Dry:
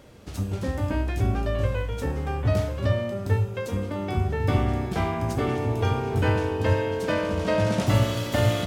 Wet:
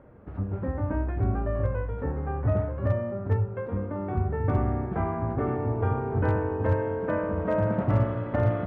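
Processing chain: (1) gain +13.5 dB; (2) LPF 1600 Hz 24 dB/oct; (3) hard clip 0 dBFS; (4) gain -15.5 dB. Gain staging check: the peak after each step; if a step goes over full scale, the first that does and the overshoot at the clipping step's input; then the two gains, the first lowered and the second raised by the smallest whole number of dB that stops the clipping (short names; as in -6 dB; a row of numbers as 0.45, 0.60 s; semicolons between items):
+5.0, +4.0, 0.0, -15.5 dBFS; step 1, 4.0 dB; step 1 +9.5 dB, step 4 -11.5 dB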